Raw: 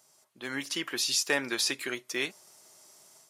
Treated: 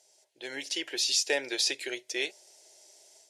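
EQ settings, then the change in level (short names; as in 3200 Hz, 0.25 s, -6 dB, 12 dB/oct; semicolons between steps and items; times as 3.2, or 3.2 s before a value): LPF 7500 Hz 12 dB/oct; tone controls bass -11 dB, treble 0 dB; fixed phaser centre 490 Hz, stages 4; +3.0 dB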